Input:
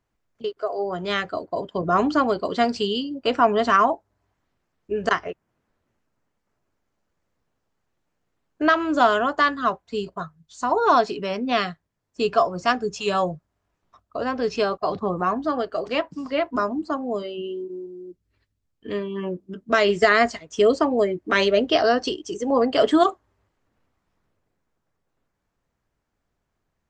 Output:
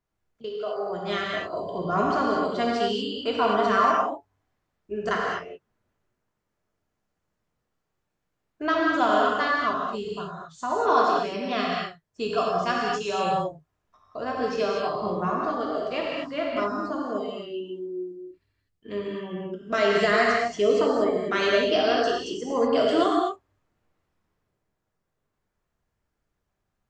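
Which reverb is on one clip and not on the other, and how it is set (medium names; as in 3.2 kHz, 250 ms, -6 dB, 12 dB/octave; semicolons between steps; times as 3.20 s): gated-style reverb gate 270 ms flat, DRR -3.5 dB; trim -7.5 dB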